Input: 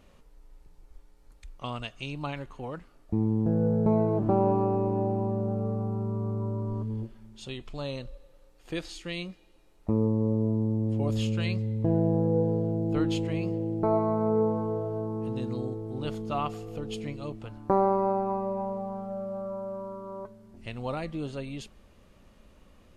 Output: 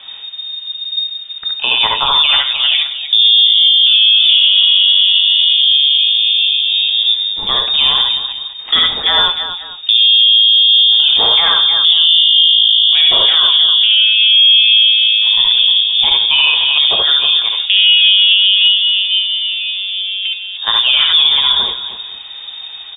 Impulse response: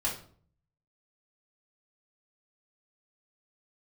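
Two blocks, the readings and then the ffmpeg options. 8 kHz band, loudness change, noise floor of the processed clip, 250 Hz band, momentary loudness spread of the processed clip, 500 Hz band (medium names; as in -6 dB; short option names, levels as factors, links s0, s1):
no reading, +21.0 dB, -29 dBFS, under -10 dB, 13 LU, -4.5 dB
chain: -filter_complex "[0:a]asplit=2[s0][s1];[1:a]atrim=start_sample=2205[s2];[s1][s2]afir=irnorm=-1:irlink=0,volume=0.237[s3];[s0][s3]amix=inputs=2:normalize=0,lowpass=f=3100:t=q:w=0.5098,lowpass=f=3100:t=q:w=0.6013,lowpass=f=3100:t=q:w=0.9,lowpass=f=3100:t=q:w=2.563,afreqshift=-3700,lowshelf=f=180:g=7,asplit=2[s4][s5];[s5]aecho=0:1:61|72|74|168|309|520:0.355|0.631|0.335|0.133|0.299|0.112[s6];[s4][s6]amix=inputs=2:normalize=0,alimiter=level_in=11.9:limit=0.891:release=50:level=0:latency=1,volume=0.891"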